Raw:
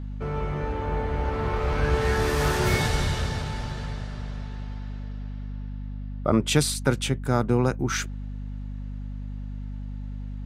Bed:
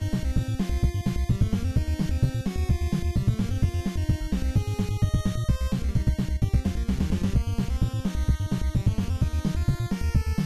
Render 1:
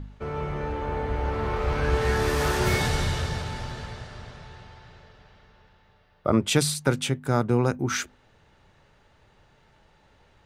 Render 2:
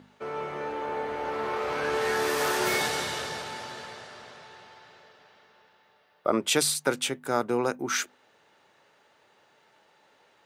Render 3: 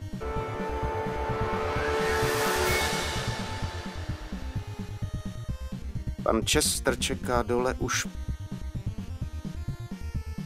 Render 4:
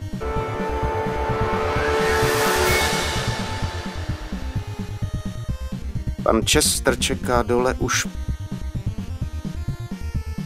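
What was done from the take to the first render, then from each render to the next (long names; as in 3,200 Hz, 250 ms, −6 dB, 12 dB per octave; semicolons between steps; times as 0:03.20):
hum removal 50 Hz, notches 5
high-pass filter 340 Hz 12 dB per octave; high-shelf EQ 11,000 Hz +6 dB
mix in bed −10 dB
level +7 dB; brickwall limiter −3 dBFS, peak gain reduction 1 dB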